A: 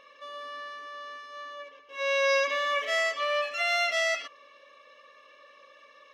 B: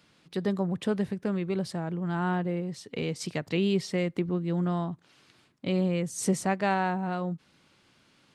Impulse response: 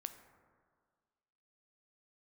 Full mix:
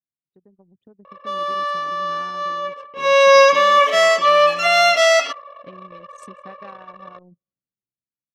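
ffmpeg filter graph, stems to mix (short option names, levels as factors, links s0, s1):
-filter_complex "[0:a]equalizer=f=250:t=o:w=1:g=5,equalizer=f=1000:t=o:w=1:g=7,equalizer=f=2000:t=o:w=1:g=-6,adelay=1050,volume=1.26,asplit=2[s0][s1];[s1]volume=0.316[s2];[1:a]acompressor=threshold=0.0316:ratio=5,volume=0.119,asplit=2[s3][s4];[s4]volume=0.141[s5];[2:a]atrim=start_sample=2205[s6];[s2][s5]amix=inputs=2:normalize=0[s7];[s7][s6]afir=irnorm=-1:irlink=0[s8];[s0][s3][s8]amix=inputs=3:normalize=0,highpass=f=170:p=1,anlmdn=0.0251,dynaudnorm=f=440:g=5:m=3.55"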